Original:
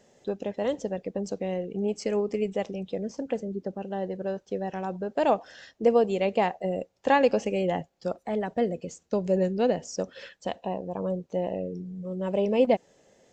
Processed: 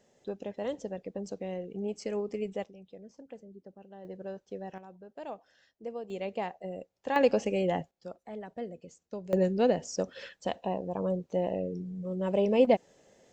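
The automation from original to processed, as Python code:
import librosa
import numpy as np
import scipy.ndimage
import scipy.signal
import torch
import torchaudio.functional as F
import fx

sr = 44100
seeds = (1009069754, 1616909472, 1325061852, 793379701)

y = fx.gain(x, sr, db=fx.steps((0.0, -6.5), (2.64, -17.0), (4.05, -9.0), (4.78, -18.0), (6.1, -10.0), (7.16, -2.0), (7.91, -12.5), (9.33, -1.0)))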